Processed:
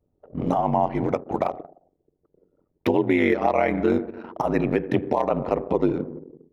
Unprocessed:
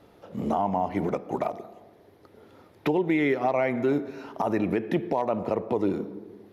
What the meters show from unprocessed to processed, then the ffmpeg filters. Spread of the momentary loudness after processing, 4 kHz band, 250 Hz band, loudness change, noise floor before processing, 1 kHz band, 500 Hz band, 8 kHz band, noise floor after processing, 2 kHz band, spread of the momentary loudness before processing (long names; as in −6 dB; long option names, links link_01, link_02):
10 LU, +3.0 dB, +3.0 dB, +3.5 dB, −57 dBFS, +3.5 dB, +3.5 dB, can't be measured, −74 dBFS, +3.5 dB, 10 LU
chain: -af "anlmdn=0.398,aeval=exprs='val(0)*sin(2*PI*46*n/s)':channel_layout=same,volume=6.5dB"